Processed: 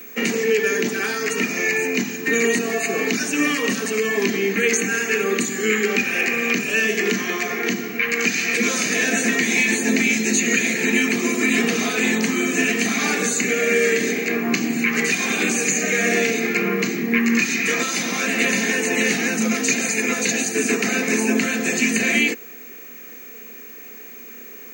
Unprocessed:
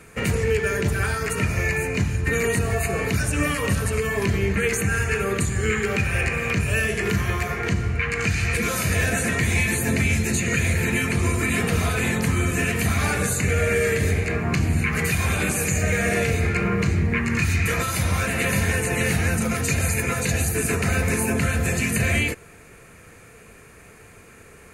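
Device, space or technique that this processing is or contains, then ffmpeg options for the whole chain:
old television with a line whistle: -af "highpass=250,highpass=f=200:w=0.5412,highpass=f=200:w=1.3066,equalizer=f=240:t=q:w=4:g=8,equalizer=f=590:t=q:w=4:g=-10,equalizer=f=970:t=q:w=4:g=-8,equalizer=f=1.4k:t=q:w=4:g=-7,equalizer=f=6.3k:t=q:w=4:g=6,lowpass=f=7k:w=0.5412,lowpass=f=7k:w=1.3066,aeval=exprs='val(0)+0.00708*sin(2*PI*15734*n/s)':c=same,volume=6dB"

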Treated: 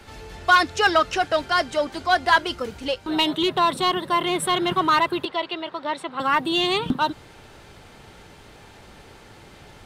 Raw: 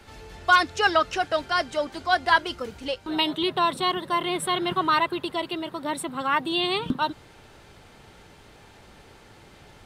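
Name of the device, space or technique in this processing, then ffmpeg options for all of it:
parallel distortion: -filter_complex "[0:a]asplit=2[a][b];[b]asoftclip=type=hard:threshold=-20.5dB,volume=-5dB[c];[a][c]amix=inputs=2:normalize=0,asettb=1/sr,asplit=3[d][e][f];[d]atrim=end=5.254[g];[e]atrim=start=5.25:end=6.2,asetpts=PTS-STARTPTS,afade=t=in:d=0.004:c=qsin,afade=t=out:st=0.946:d=0.004:c=qsin,acrossover=split=400 5600:gain=0.251 1 0.0631[h][i][j];[h][i][j]amix=inputs=3:normalize=0[k];[f]atrim=start=6.196[l];[g][k]acrossfade=d=0.004:c1=hsin:c2=qsin[m];[m][l]acrossfade=d=0.004:c1=qsin:c2=hsin"

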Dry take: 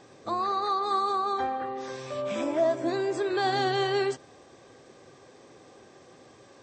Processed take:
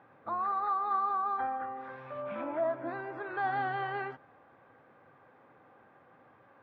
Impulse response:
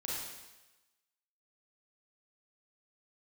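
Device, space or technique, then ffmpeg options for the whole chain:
bass cabinet: -af "highpass=80,equalizer=f=380:t=q:w=4:g=-9,equalizer=f=880:t=q:w=4:g=7,equalizer=f=1.4k:t=q:w=4:g=10,lowpass=f=2.4k:w=0.5412,lowpass=f=2.4k:w=1.3066,volume=-7.5dB"

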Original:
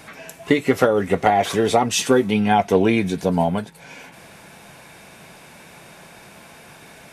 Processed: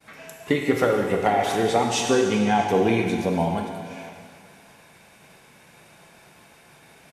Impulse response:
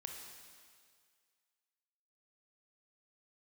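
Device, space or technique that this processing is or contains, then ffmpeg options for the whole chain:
stairwell: -filter_complex "[0:a]agate=range=-33dB:threshold=-39dB:ratio=3:detection=peak,asettb=1/sr,asplit=3[a][b][c];[a]atrim=end=1.664[d];[b]atrim=start=1.66:end=2.68,asetpts=PTS-STARTPTS,afade=t=in:d=0.004:c=qsin,afade=t=out:st=1.016:d=0.004:c=qsin,lowpass=8.8k[e];[c]atrim=start=2.676[f];[d][e]acrossfade=d=0.004:c1=hsin:c2=qsin[g];[g][f]acrossfade=d=0.004:c1=qsin:c2=hsin[h];[1:a]atrim=start_sample=2205[i];[h][i]afir=irnorm=-1:irlink=0,aecho=1:1:639:0.0668"

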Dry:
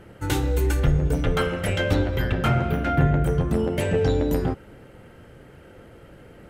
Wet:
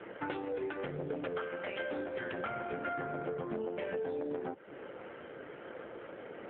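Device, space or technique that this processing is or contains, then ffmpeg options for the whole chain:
voicemail: -filter_complex "[0:a]asplit=3[a][b][c];[a]afade=t=out:st=1.47:d=0.02[d];[b]highpass=150,afade=t=in:st=1.47:d=0.02,afade=t=out:st=1.95:d=0.02[e];[c]afade=t=in:st=1.95:d=0.02[f];[d][e][f]amix=inputs=3:normalize=0,highpass=360,lowpass=2.8k,acompressor=threshold=-40dB:ratio=8,volume=6dB" -ar 8000 -c:a libopencore_amrnb -b:a 7400

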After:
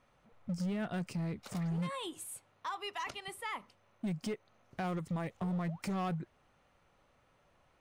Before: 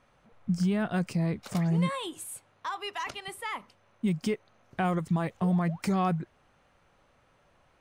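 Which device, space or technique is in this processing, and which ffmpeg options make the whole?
limiter into clipper: -af "alimiter=limit=-22.5dB:level=0:latency=1:release=196,asoftclip=type=hard:threshold=-27dB,bandreject=f=1.6k:w=24,volume=-4.5dB"

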